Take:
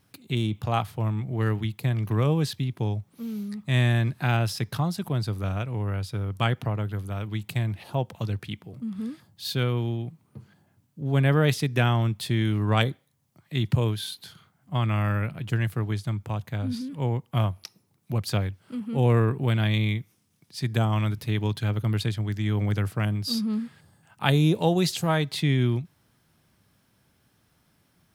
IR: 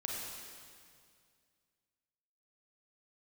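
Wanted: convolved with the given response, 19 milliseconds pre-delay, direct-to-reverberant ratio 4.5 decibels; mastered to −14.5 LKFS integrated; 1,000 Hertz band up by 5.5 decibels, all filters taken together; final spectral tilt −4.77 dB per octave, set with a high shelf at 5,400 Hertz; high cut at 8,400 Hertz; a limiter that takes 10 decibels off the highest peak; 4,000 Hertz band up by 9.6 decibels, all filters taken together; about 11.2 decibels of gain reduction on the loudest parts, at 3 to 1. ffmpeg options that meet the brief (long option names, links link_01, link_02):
-filter_complex "[0:a]lowpass=8400,equalizer=frequency=1000:width_type=o:gain=6.5,equalizer=frequency=4000:width_type=o:gain=8.5,highshelf=frequency=5400:gain=8,acompressor=threshold=-30dB:ratio=3,alimiter=limit=-22dB:level=0:latency=1,asplit=2[link_01][link_02];[1:a]atrim=start_sample=2205,adelay=19[link_03];[link_02][link_03]afir=irnorm=-1:irlink=0,volume=-6.5dB[link_04];[link_01][link_04]amix=inputs=2:normalize=0,volume=17.5dB"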